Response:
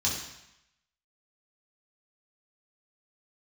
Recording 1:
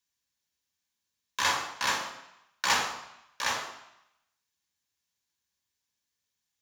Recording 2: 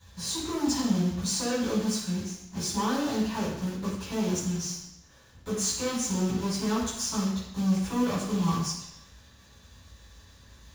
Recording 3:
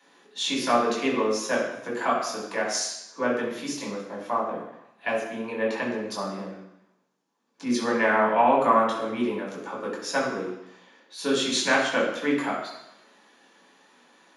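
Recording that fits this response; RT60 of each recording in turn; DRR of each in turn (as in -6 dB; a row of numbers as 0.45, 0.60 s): 3; 0.85, 0.85, 0.85 s; 3.0, -16.0, -6.0 dB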